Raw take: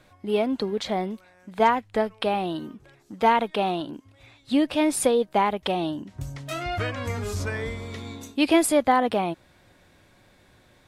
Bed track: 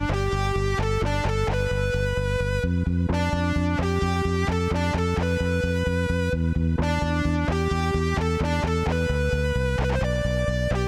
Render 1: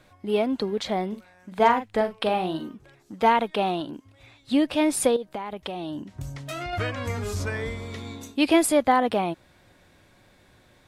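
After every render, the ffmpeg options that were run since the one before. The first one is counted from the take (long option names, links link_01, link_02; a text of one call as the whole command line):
ffmpeg -i in.wav -filter_complex "[0:a]asettb=1/sr,asplit=3[link_01][link_02][link_03];[link_01]atrim=end=1.084[link_04];[link_02]atrim=start=1.08:end=2.69,asetpts=PTS-STARTPTS,afade=type=in:duration=0.004:curve=qsin,afade=type=out:start_time=1.606:duration=0.004:curve=qsin,asplit=2[link_05][link_06];[link_06]adelay=43,volume=-8.5dB[link_07];[link_05][link_07]amix=inputs=2:normalize=0,atrim=end_sample=71001[link_08];[link_03]atrim=start=2.686[link_09];[link_04][link_08]acrossfade=duration=0.004:curve1=hsin:curve2=qsin[link_10];[link_10][link_09]acrossfade=duration=0.004:curve1=qsin:curve2=hsin,asettb=1/sr,asplit=3[link_11][link_12][link_13];[link_11]atrim=end=5.164[link_14];[link_12]atrim=start=5.16:end=6.73,asetpts=PTS-STARTPTS,afade=type=in:duration=0.004:curve=qsin,afade=type=out:start_time=1.566:duration=0.004:curve=qsin,acompressor=threshold=-28dB:ratio=12:attack=3.2:release=140:knee=1:detection=peak[link_15];[link_13]atrim=start=6.726[link_16];[link_14][link_15]acrossfade=duration=0.004:curve1=hsin:curve2=qsin[link_17];[link_17][link_16]acrossfade=duration=0.004:curve1=qsin:curve2=hsin" out.wav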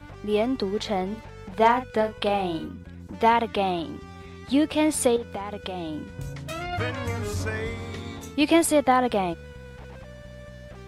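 ffmpeg -i in.wav -i bed.wav -filter_complex "[1:a]volume=-19dB[link_01];[0:a][link_01]amix=inputs=2:normalize=0" out.wav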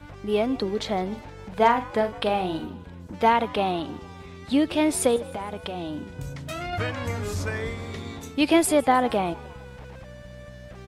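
ffmpeg -i in.wav -filter_complex "[0:a]asplit=5[link_01][link_02][link_03][link_04][link_05];[link_02]adelay=155,afreqshift=67,volume=-20.5dB[link_06];[link_03]adelay=310,afreqshift=134,volume=-26dB[link_07];[link_04]adelay=465,afreqshift=201,volume=-31.5dB[link_08];[link_05]adelay=620,afreqshift=268,volume=-37dB[link_09];[link_01][link_06][link_07][link_08][link_09]amix=inputs=5:normalize=0" out.wav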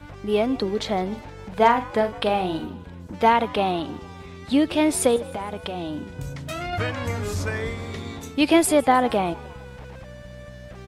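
ffmpeg -i in.wav -af "volume=2dB" out.wav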